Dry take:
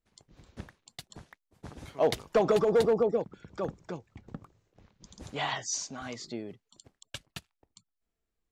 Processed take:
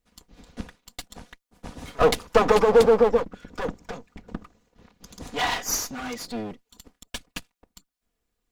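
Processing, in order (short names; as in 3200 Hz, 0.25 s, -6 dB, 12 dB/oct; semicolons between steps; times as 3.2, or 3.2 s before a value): minimum comb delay 4.1 ms; gain +8.5 dB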